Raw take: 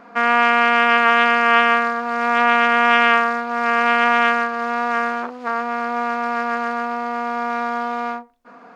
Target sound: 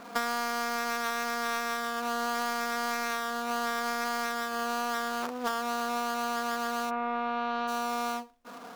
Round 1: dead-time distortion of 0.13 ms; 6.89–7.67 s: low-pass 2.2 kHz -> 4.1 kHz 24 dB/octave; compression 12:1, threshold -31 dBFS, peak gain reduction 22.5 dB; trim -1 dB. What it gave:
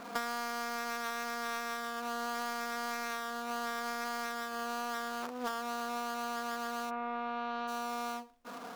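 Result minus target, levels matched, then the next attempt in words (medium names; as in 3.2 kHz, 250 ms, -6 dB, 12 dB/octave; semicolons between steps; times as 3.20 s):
compression: peak gain reduction +6 dB
dead-time distortion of 0.13 ms; 6.89–7.67 s: low-pass 2.2 kHz -> 4.1 kHz 24 dB/octave; compression 12:1, threshold -24.5 dBFS, peak gain reduction 16.5 dB; trim -1 dB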